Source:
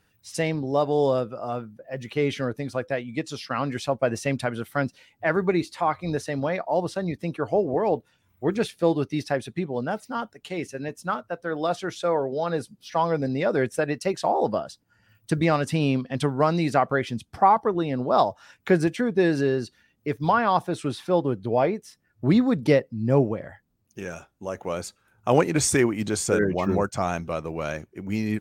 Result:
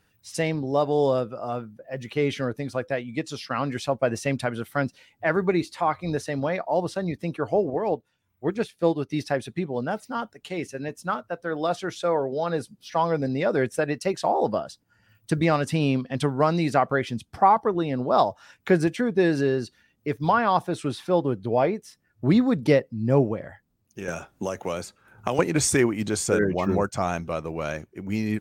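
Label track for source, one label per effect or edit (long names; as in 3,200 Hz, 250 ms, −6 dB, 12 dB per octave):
7.700000	9.090000	expander for the loud parts, over −34 dBFS
24.080000	25.390000	multiband upward and downward compressor depth 100%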